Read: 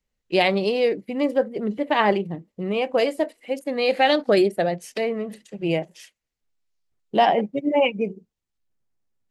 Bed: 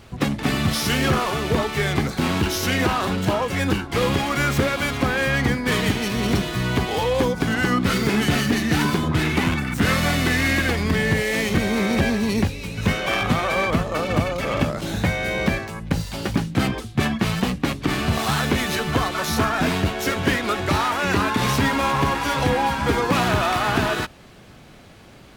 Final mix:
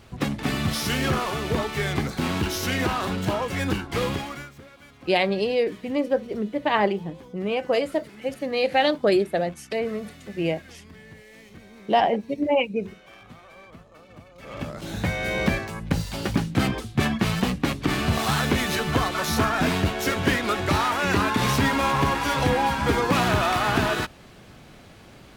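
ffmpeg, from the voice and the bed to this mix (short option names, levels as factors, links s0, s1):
-filter_complex "[0:a]adelay=4750,volume=0.794[s0];[1:a]volume=10.6,afade=t=out:st=3.98:d=0.52:silence=0.0794328,afade=t=in:st=14.33:d=1.05:silence=0.0595662[s1];[s0][s1]amix=inputs=2:normalize=0"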